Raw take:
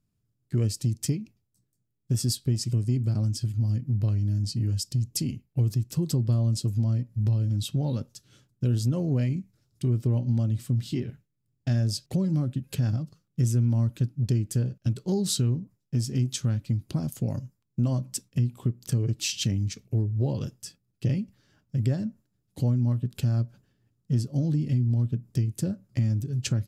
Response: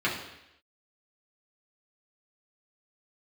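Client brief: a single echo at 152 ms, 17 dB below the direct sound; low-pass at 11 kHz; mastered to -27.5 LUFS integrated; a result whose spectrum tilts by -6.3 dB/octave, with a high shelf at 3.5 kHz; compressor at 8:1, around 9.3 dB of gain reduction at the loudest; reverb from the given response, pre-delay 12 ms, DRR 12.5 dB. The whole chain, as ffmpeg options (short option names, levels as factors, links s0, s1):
-filter_complex "[0:a]lowpass=11000,highshelf=f=3500:g=-5.5,acompressor=threshold=0.0316:ratio=8,aecho=1:1:152:0.141,asplit=2[s0][s1];[1:a]atrim=start_sample=2205,adelay=12[s2];[s1][s2]afir=irnorm=-1:irlink=0,volume=0.0596[s3];[s0][s3]amix=inputs=2:normalize=0,volume=2.37"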